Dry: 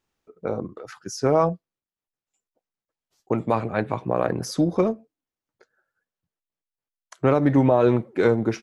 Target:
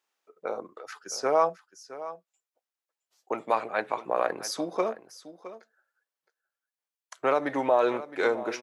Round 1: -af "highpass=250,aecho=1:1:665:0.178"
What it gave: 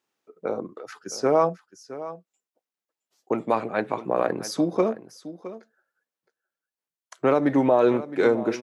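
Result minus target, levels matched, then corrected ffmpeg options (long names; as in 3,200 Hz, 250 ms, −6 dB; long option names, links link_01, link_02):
250 Hz band +6.0 dB
-af "highpass=610,aecho=1:1:665:0.178"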